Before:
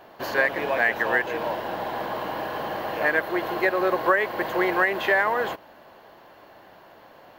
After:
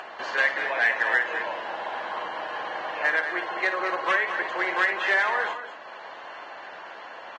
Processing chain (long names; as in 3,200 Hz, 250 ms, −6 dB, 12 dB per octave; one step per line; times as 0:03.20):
wavefolder on the positive side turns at −14.5 dBFS
upward compression, threshold −26 dBFS
resonant band-pass 1,800 Hz, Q 0.73
on a send: multi-tap delay 56/204/240 ms −10/−9.5/−14.5 dB
on the sum: Ogg Vorbis 16 kbit/s 22,050 Hz